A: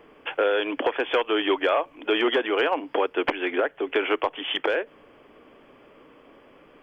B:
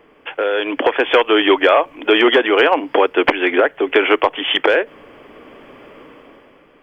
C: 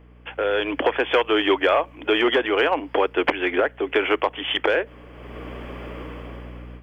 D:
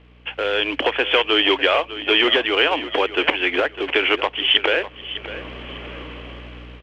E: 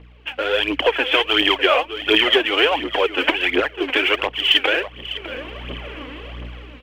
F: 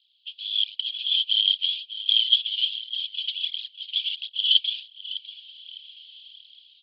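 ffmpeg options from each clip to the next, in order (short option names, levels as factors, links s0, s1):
-af "equalizer=f=2000:t=o:w=0.35:g=2.5,dynaudnorm=f=130:g=11:m=3.16,volume=1.19"
-af "aeval=exprs='val(0)+0.01*(sin(2*PI*60*n/s)+sin(2*PI*2*60*n/s)/2+sin(2*PI*3*60*n/s)/3+sin(2*PI*4*60*n/s)/4+sin(2*PI*5*60*n/s)/5)':c=same,dynaudnorm=f=270:g=3:m=3.76,aeval=exprs='0.944*(cos(1*acos(clip(val(0)/0.944,-1,1)))-cos(1*PI/2))+0.00596*(cos(7*acos(clip(val(0)/0.944,-1,1)))-cos(7*PI/2))':c=same,volume=0.422"
-af "acrusher=bits=4:mode=log:mix=0:aa=0.000001,lowpass=f=3000:t=q:w=3.6,aecho=1:1:603|1206|1809:0.2|0.0559|0.0156,volume=0.891"
-af "aphaser=in_gain=1:out_gain=1:delay=4.1:decay=0.6:speed=1.4:type=triangular,volume=0.891"
-af "asuperpass=centerf=3900:order=8:qfactor=2.5,volume=1.5"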